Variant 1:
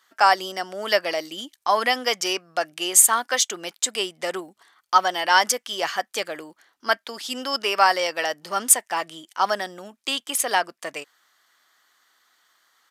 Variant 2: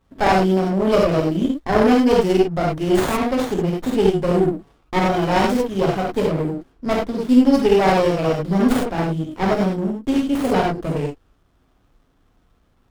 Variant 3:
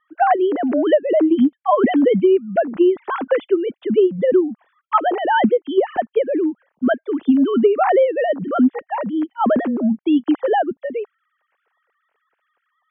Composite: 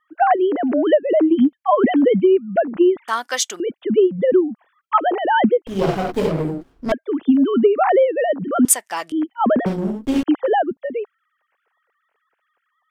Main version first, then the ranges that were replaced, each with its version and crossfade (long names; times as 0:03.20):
3
0:03.08–0:03.60: punch in from 1
0:05.67–0:06.92: punch in from 2
0:08.65–0:09.12: punch in from 1
0:09.66–0:10.23: punch in from 2